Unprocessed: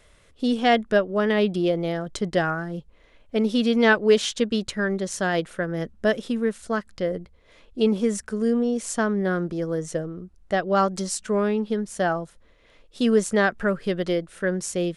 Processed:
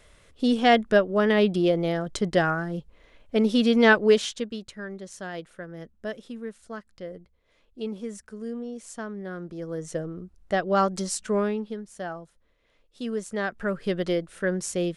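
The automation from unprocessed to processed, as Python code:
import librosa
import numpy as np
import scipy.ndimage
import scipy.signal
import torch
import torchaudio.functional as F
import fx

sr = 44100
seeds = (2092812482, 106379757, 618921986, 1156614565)

y = fx.gain(x, sr, db=fx.line((4.04, 0.5), (4.62, -12.0), (9.3, -12.0), (10.09, -1.5), (11.39, -1.5), (11.83, -11.0), (13.24, -11.0), (13.9, -1.5)))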